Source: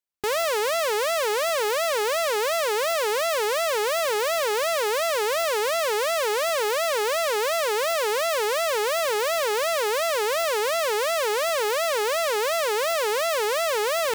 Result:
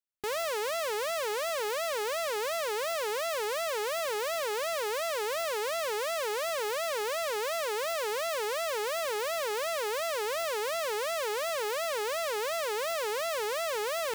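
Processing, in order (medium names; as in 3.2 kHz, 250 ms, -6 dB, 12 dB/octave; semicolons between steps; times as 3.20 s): modulation noise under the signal 22 dB; trim -8 dB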